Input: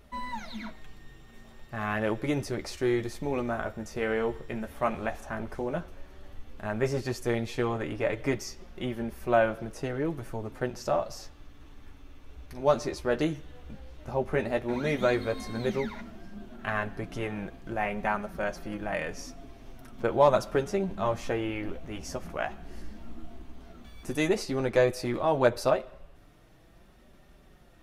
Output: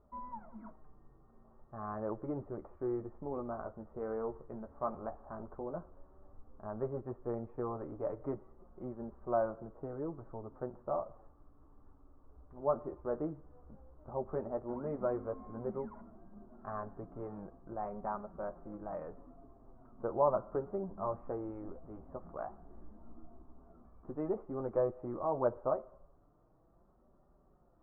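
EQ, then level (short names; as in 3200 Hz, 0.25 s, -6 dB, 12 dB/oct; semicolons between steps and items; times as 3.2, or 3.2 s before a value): elliptic low-pass 1200 Hz, stop band 80 dB; low shelf 410 Hz -4.5 dB; -6.5 dB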